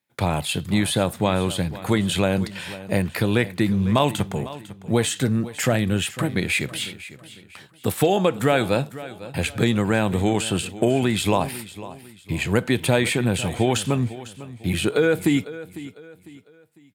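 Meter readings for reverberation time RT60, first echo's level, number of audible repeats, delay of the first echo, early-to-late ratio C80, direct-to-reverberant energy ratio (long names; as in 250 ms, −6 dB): no reverb audible, −16.0 dB, 3, 501 ms, no reverb audible, no reverb audible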